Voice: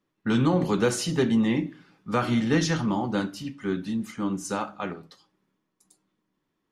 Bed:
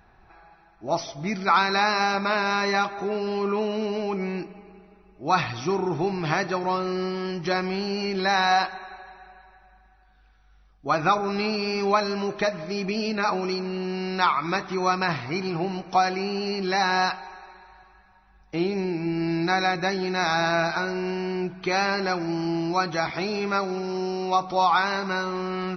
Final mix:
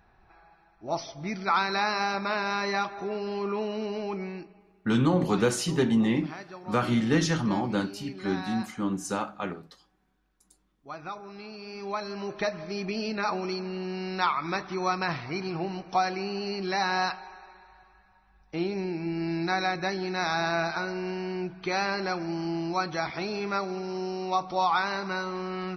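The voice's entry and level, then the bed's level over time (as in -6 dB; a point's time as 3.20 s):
4.60 s, -1.0 dB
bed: 4.14 s -5 dB
4.91 s -17 dB
11.48 s -17 dB
12.45 s -4.5 dB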